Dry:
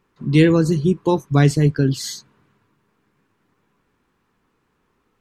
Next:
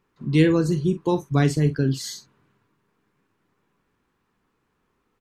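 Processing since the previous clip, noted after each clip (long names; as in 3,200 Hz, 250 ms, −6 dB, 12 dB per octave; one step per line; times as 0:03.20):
double-tracking delay 45 ms −12 dB
level −4.5 dB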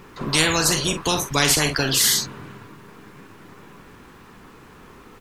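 every bin compressed towards the loudest bin 4 to 1
level +4 dB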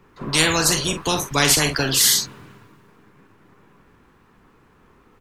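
multiband upward and downward expander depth 40%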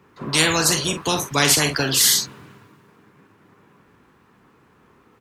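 high-pass filter 82 Hz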